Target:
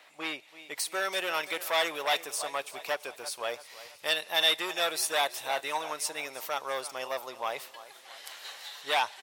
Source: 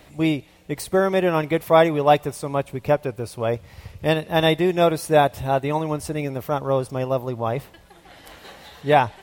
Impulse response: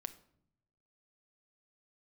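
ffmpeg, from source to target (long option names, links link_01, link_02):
-filter_complex "[0:a]aecho=1:1:334|668|1002|1336:0.133|0.0627|0.0295|0.0138,acrossover=split=4000[link_01][link_02];[link_01]asoftclip=type=hard:threshold=-17.5dB[link_03];[link_02]dynaudnorm=framelen=300:gausssize=5:maxgain=12dB[link_04];[link_03][link_04]amix=inputs=2:normalize=0,highpass=990,highshelf=frequency=6400:gain=-10.5,volume=-1dB"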